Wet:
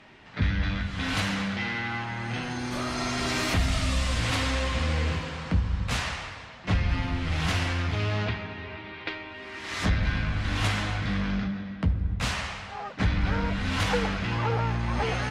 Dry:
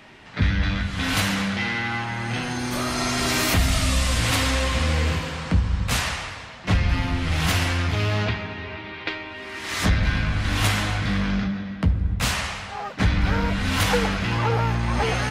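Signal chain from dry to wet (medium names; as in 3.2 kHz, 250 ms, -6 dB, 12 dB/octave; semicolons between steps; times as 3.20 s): distance through air 53 m; trim -4.5 dB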